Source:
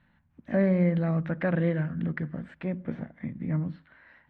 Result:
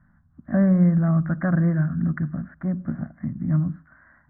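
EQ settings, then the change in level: LPF 1600 Hz 24 dB/oct; bell 900 Hz -13 dB 0.29 oct; fixed phaser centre 1100 Hz, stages 4; +9.0 dB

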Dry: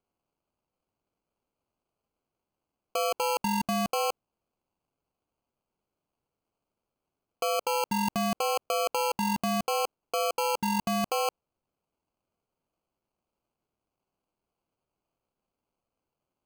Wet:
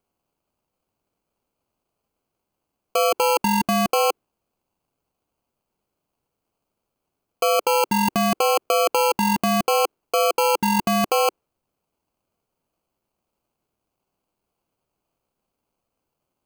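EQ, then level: dynamic EQ 360 Hz, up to +8 dB, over -48 dBFS, Q 1.6; dynamic EQ 1700 Hz, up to +4 dB, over -44 dBFS, Q 0.82; high shelf 9500 Hz +5 dB; +5.5 dB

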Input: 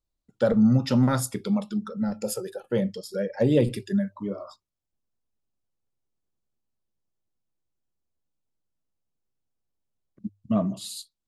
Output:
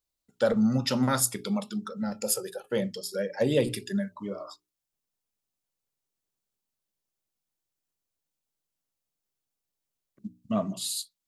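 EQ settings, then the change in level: tilt +2 dB/oct; notches 60/120/180/240/300/360/420 Hz; 0.0 dB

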